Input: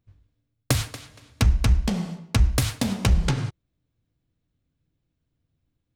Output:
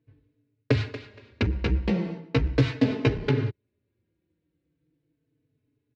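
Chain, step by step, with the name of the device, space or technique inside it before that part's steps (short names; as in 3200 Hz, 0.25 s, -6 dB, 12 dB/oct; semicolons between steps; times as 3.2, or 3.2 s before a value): barber-pole flanger into a guitar amplifier (endless flanger 4.1 ms -0.38 Hz; soft clip -17.5 dBFS, distortion -13 dB; speaker cabinet 110–3600 Hz, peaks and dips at 200 Hz -6 dB, 300 Hz +7 dB, 430 Hz +9 dB, 750 Hz -8 dB, 1200 Hz -8 dB, 3300 Hz -7 dB); 1.54–3.16 doubler 15 ms -5 dB; gain +5.5 dB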